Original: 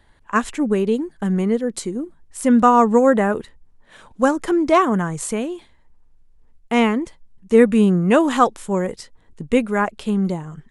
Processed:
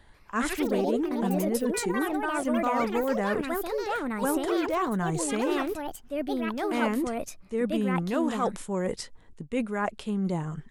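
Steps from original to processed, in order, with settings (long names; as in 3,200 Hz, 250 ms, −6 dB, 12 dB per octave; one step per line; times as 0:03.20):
reversed playback
downward compressor 6 to 1, threshold −26 dBFS, peak gain reduction 17.5 dB
reversed playback
delay with pitch and tempo change per echo 141 ms, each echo +4 semitones, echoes 3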